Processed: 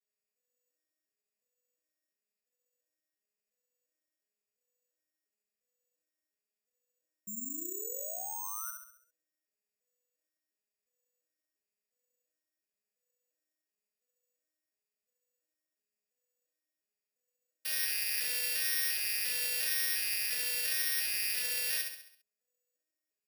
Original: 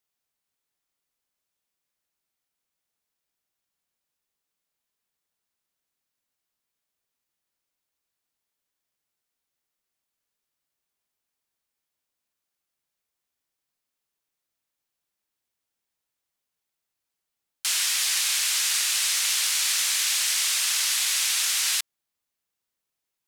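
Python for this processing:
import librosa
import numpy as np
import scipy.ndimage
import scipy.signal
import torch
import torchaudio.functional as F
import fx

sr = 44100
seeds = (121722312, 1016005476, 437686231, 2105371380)

y = fx.vocoder_arp(x, sr, chord='minor triad', root=56, every_ms=350)
y = fx.vowel_filter(y, sr, vowel='e')
y = fx.spec_paint(y, sr, seeds[0], shape='rise', start_s=7.27, length_s=1.44, low_hz=200.0, high_hz=1500.0, level_db=-47.0)
y = fx.echo_feedback(y, sr, ms=67, feedback_pct=49, wet_db=-5.0)
y = (np.kron(y[::6], np.eye(6)[0]) * 6)[:len(y)]
y = y * librosa.db_to_amplitude(-1.5)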